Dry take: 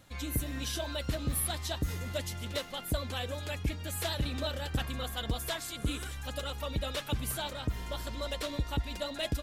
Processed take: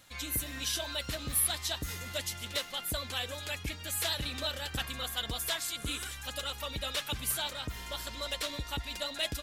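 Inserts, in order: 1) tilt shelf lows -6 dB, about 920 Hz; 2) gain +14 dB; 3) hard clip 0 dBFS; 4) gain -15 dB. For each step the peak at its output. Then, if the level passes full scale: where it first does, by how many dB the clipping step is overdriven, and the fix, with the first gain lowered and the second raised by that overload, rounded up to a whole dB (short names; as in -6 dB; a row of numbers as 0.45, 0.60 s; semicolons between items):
-16.0, -2.0, -2.0, -17.0 dBFS; no overload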